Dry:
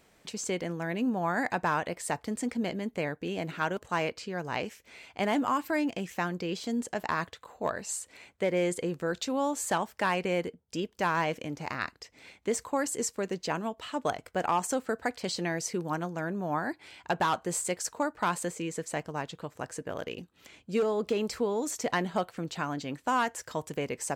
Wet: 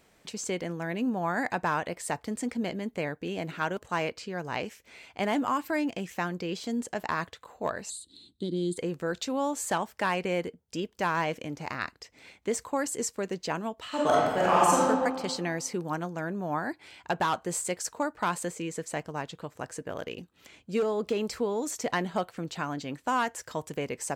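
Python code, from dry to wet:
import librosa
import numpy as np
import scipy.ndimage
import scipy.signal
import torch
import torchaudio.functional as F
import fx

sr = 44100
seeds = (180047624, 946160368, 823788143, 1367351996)

y = fx.curve_eq(x, sr, hz=(120.0, 320.0, 560.0, 1400.0, 2300.0, 3900.0, 5700.0, 9100.0, 13000.0), db=(0, 6, -22, -22, -29, 14, -17, -1, -15), at=(7.89, 8.76), fade=0.02)
y = fx.reverb_throw(y, sr, start_s=13.87, length_s=0.94, rt60_s=1.6, drr_db=-7.0)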